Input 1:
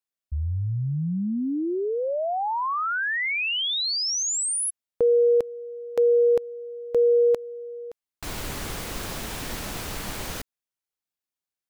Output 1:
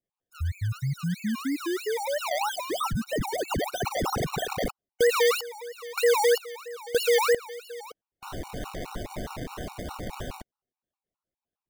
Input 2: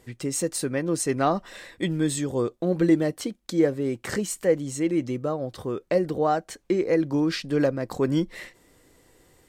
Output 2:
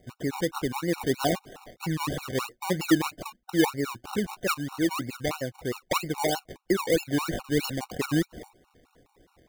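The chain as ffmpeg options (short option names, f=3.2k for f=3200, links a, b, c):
-af "acrusher=samples=26:mix=1:aa=0.000001:lfo=1:lforange=15.6:lforate=3.1,afftfilt=real='re*gt(sin(2*PI*4.8*pts/sr)*(1-2*mod(floor(b*sr/1024/740),2)),0)':imag='im*gt(sin(2*PI*4.8*pts/sr)*(1-2*mod(floor(b*sr/1024/740),2)),0)':win_size=1024:overlap=0.75"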